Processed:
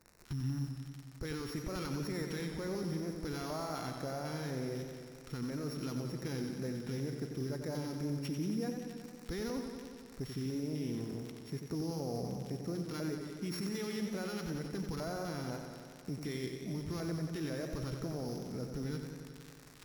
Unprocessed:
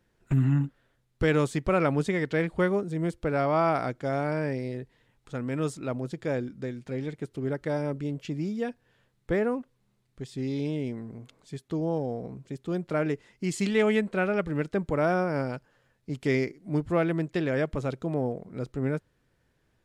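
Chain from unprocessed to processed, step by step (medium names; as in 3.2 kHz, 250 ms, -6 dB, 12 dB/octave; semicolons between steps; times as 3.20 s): sorted samples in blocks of 8 samples; crackle 81 per s -38 dBFS; LFO notch square 2 Hz 590–3200 Hz; reverse; upward compressor, threshold -49 dBFS; reverse; modulation noise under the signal 30 dB; treble shelf 8.4 kHz -5 dB; in parallel at -2 dB: compression, threshold -39 dBFS, peak gain reduction 18 dB; on the sum: peak limiter -27 dBFS, peak gain reduction 15.5 dB; modulated delay 91 ms, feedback 76%, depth 55 cents, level -7 dB; trim -4 dB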